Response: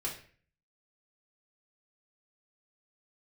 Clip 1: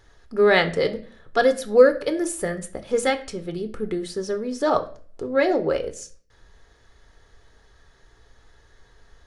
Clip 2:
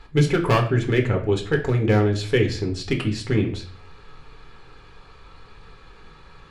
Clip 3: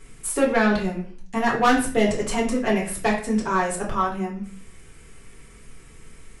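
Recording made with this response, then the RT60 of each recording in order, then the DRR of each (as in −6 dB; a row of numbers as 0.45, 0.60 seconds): 3; 0.45, 0.45, 0.45 seconds; 7.5, 2.0, −4.0 decibels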